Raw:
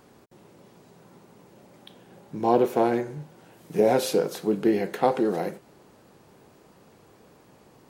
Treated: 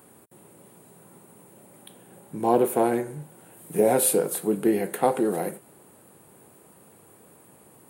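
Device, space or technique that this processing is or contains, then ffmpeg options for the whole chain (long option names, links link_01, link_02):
budget condenser microphone: -af "highpass=77,highshelf=frequency=7300:width_type=q:width=3:gain=10"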